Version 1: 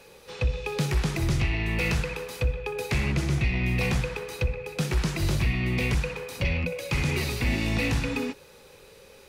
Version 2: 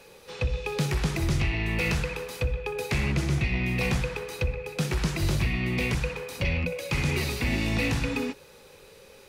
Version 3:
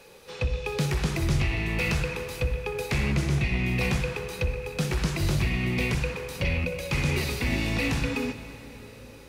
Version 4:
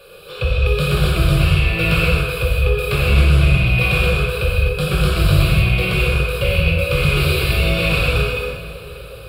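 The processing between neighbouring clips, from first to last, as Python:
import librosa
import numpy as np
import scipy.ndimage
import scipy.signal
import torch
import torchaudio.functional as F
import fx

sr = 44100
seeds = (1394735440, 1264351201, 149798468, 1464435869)

y1 = fx.hum_notches(x, sr, base_hz=60, count=2)
y2 = fx.rev_plate(y1, sr, seeds[0], rt60_s=4.5, hf_ratio=0.75, predelay_ms=0, drr_db=10.5)
y3 = fx.fixed_phaser(y2, sr, hz=1300.0, stages=8)
y3 = fx.rev_gated(y3, sr, seeds[1], gate_ms=290, shape='flat', drr_db=-5.0)
y3 = y3 * librosa.db_to_amplitude(8.0)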